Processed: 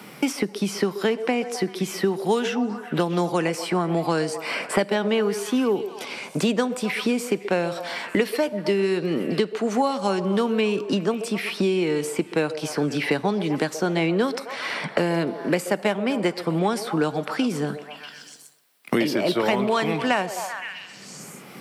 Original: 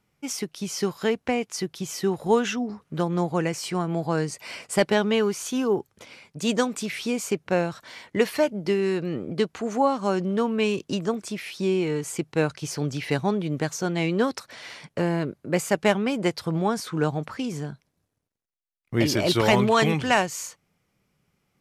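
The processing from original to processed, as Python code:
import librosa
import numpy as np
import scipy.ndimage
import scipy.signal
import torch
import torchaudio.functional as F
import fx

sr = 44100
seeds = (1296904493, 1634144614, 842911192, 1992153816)

y = scipy.signal.sosfilt(scipy.signal.butter(4, 170.0, 'highpass', fs=sr, output='sos'), x)
y = fx.peak_eq(y, sr, hz=6600.0, db=-8.0, octaves=0.31)
y = fx.echo_stepped(y, sr, ms=128, hz=530.0, octaves=0.7, feedback_pct=70, wet_db=-10.5)
y = fx.rev_plate(y, sr, seeds[0], rt60_s=0.87, hf_ratio=0.85, predelay_ms=0, drr_db=18.5)
y = fx.band_squash(y, sr, depth_pct=100)
y = y * 10.0 ** (1.0 / 20.0)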